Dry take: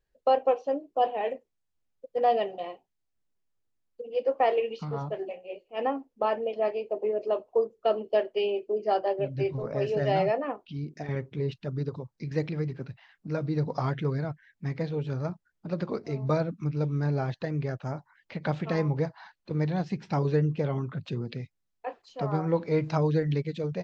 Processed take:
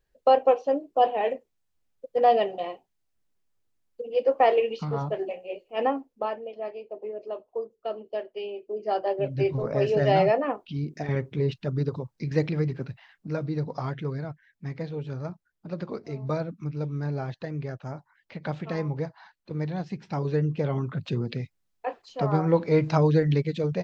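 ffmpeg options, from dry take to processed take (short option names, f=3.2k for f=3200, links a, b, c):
-af "volume=22.5dB,afade=t=out:st=5.83:d=0.57:silence=0.281838,afade=t=in:st=8.58:d=0.97:silence=0.266073,afade=t=out:st=12.71:d=1.01:silence=0.446684,afade=t=in:st=20.17:d=0.98:silence=0.446684"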